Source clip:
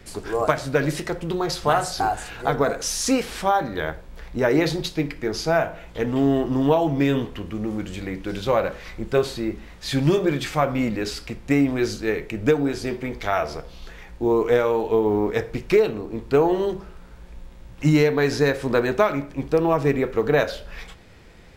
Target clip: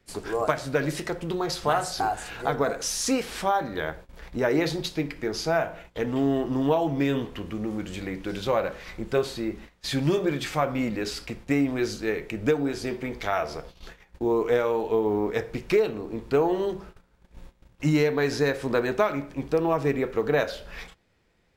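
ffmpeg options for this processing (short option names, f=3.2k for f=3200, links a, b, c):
-filter_complex "[0:a]agate=range=-17dB:threshold=-38dB:ratio=16:detection=peak,lowshelf=f=100:g=-5.5,asplit=2[a][b];[b]acompressor=threshold=-31dB:ratio=6,volume=-3dB[c];[a][c]amix=inputs=2:normalize=0,volume=-5dB"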